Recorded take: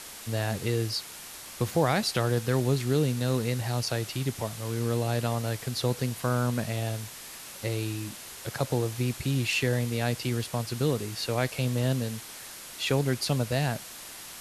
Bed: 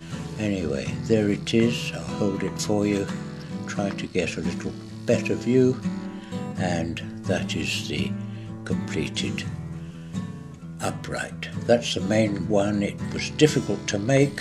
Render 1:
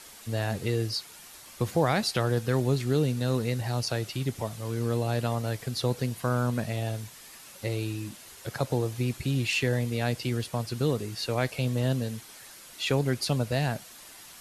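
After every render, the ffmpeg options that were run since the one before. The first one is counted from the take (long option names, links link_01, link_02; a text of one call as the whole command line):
ffmpeg -i in.wav -af "afftdn=noise_reduction=7:noise_floor=-44" out.wav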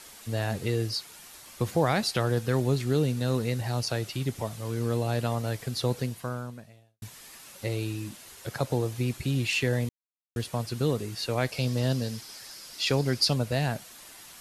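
ffmpeg -i in.wav -filter_complex "[0:a]asettb=1/sr,asplit=3[link_01][link_02][link_03];[link_01]atrim=end=11.524[link_04];[link_02]atrim=start=11.52:end=13.34,asetpts=PTS-STARTPTS,afade=type=in:duration=0.004:curve=qsin,afade=type=out:start_time=1.816:duration=0.004:curve=qsin,equalizer=frequency=5000:width_type=o:width=0.42:gain=11.5[link_05];[link_03]atrim=start=13.336[link_06];[link_04][link_05]acrossfade=duration=0.004:curve1=hsin:curve2=qsin[link_07];[link_07][link_06]acrossfade=duration=0.004:curve1=qsin:curve2=hsin,asplit=4[link_08][link_09][link_10][link_11];[link_08]atrim=end=7.02,asetpts=PTS-STARTPTS,afade=type=out:start_time=5.98:duration=1.04:curve=qua[link_12];[link_09]atrim=start=7.02:end=9.89,asetpts=PTS-STARTPTS,afade=type=in:duration=0.004:curve=hsin,afade=type=out:start_time=2.866:duration=0.004:curve=hsin[link_13];[link_10]atrim=start=9.89:end=10.36,asetpts=PTS-STARTPTS,volume=0[link_14];[link_11]atrim=start=10.36,asetpts=PTS-STARTPTS,afade=type=in:duration=0.004:curve=hsin[link_15];[link_12][link_13][link_14][link_15]concat=n=4:v=0:a=1" out.wav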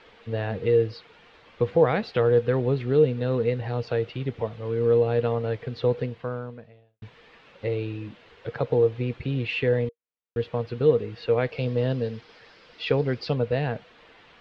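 ffmpeg -i in.wav -af "lowpass=frequency=3200:width=0.5412,lowpass=frequency=3200:width=1.3066,equalizer=frequency=470:width_type=o:width=0.2:gain=14" out.wav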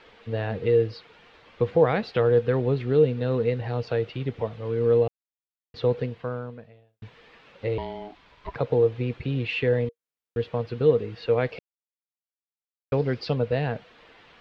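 ffmpeg -i in.wav -filter_complex "[0:a]asettb=1/sr,asplit=3[link_01][link_02][link_03];[link_01]atrim=end=7.784[link_04];[link_02]atrim=start=7.78:end=8.56,asetpts=PTS-STARTPTS,afade=type=in:duration=0.004:curve=qsin,afade=type=out:start_time=0.776:duration=0.004:curve=qsin,aeval=exprs='val(0)*sin(2*PI*520*n/s)':channel_layout=same[link_05];[link_03]atrim=start=8.556[link_06];[link_04][link_05]acrossfade=duration=0.004:curve1=hsin:curve2=qsin[link_07];[link_07][link_06]acrossfade=duration=0.004:curve1=qsin:curve2=hsin,asplit=5[link_08][link_09][link_10][link_11][link_12];[link_08]atrim=end=5.08,asetpts=PTS-STARTPTS,afade=type=out:start_time=5.076:duration=0.004:curve=hsin[link_13];[link_09]atrim=start=5.08:end=5.74,asetpts=PTS-STARTPTS,volume=0[link_14];[link_10]atrim=start=5.74:end=11.59,asetpts=PTS-STARTPTS,afade=type=in:duration=0.004:curve=hsin,afade=type=out:start_time=5.846:duration=0.004:curve=hsin[link_15];[link_11]atrim=start=11.59:end=12.92,asetpts=PTS-STARTPTS,volume=0[link_16];[link_12]atrim=start=12.92,asetpts=PTS-STARTPTS,afade=type=in:duration=0.004:curve=hsin[link_17];[link_13][link_14][link_15][link_16][link_17]concat=n=5:v=0:a=1" out.wav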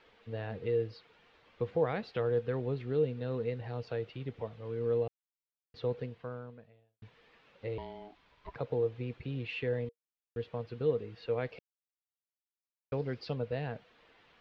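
ffmpeg -i in.wav -af "volume=-10.5dB" out.wav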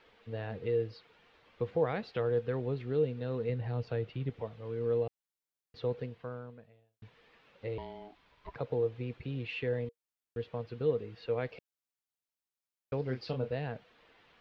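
ffmpeg -i in.wav -filter_complex "[0:a]asettb=1/sr,asplit=3[link_01][link_02][link_03];[link_01]atrim=end=3.494[link_04];[link_02]atrim=start=3.49:end=4.3,asetpts=PTS-STARTPTS,afade=type=in:duration=0.004:curve=qsin,afade=type=out:start_time=0.806:duration=0.004:curve=qsin,bass=frequency=250:gain=6,treble=frequency=4000:gain=-3[link_05];[link_03]atrim=start=4.296[link_06];[link_04][link_05]acrossfade=duration=0.004:curve1=hsin:curve2=qsin[link_07];[link_07][link_06]acrossfade=duration=0.004:curve1=qsin:curve2=hsin,asettb=1/sr,asplit=3[link_08][link_09][link_10];[link_08]atrim=end=13.044[link_11];[link_09]atrim=start=13.04:end=13.51,asetpts=PTS-STARTPTS,afade=type=in:duration=0.004:curve=qsin,afade=type=out:start_time=0.466:duration=0.004:curve=qsin,asplit=2[link_12][link_13];[link_13]adelay=31,volume=-7dB[link_14];[link_12][link_14]amix=inputs=2:normalize=0,atrim=end_sample=20727[link_15];[link_10]atrim=start=13.506[link_16];[link_11][link_15]acrossfade=duration=0.004:curve1=hsin:curve2=qsin[link_17];[link_17][link_16]acrossfade=duration=0.004:curve1=qsin:curve2=hsin" out.wav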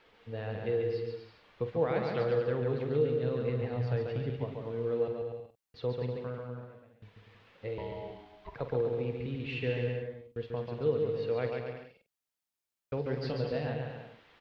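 ffmpeg -i in.wav -filter_complex "[0:a]asplit=2[link_01][link_02];[link_02]adelay=48,volume=-10.5dB[link_03];[link_01][link_03]amix=inputs=2:normalize=0,aecho=1:1:140|245|323.8|382.8|427.1:0.631|0.398|0.251|0.158|0.1" out.wav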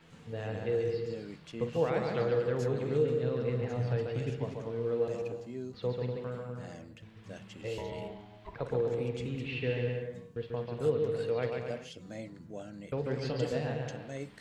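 ffmpeg -i in.wav -i bed.wav -filter_complex "[1:a]volume=-22dB[link_01];[0:a][link_01]amix=inputs=2:normalize=0" out.wav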